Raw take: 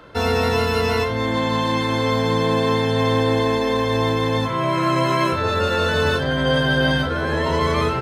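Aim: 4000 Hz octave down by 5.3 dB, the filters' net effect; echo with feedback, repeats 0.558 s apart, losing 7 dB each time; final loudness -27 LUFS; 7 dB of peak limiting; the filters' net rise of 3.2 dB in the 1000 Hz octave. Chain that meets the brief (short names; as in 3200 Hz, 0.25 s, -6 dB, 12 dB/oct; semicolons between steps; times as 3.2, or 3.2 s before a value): bell 1000 Hz +4 dB; bell 4000 Hz -7 dB; limiter -13 dBFS; feedback echo 0.558 s, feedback 45%, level -7 dB; gain -6 dB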